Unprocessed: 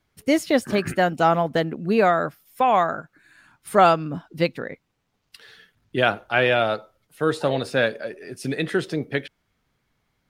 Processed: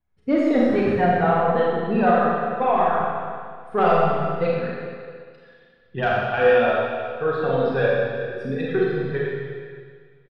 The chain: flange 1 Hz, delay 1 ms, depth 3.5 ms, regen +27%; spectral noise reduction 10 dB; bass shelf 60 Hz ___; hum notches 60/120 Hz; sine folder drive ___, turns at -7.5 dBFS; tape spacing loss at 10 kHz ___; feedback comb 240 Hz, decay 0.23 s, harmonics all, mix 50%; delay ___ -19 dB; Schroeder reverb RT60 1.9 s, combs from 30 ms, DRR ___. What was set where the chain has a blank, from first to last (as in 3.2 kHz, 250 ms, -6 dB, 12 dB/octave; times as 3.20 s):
+7.5 dB, 4 dB, 33 dB, 375 ms, -5 dB